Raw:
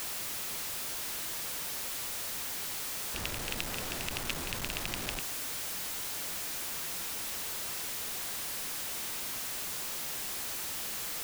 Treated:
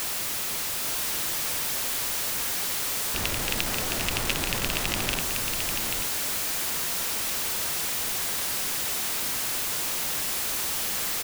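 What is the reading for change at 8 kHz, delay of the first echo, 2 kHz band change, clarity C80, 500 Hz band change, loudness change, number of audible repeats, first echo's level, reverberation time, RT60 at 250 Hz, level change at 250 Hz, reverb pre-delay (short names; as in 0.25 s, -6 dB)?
+8.5 dB, 0.835 s, +8.5 dB, none, +8.5 dB, +8.5 dB, 1, -5.0 dB, none, none, +8.5 dB, none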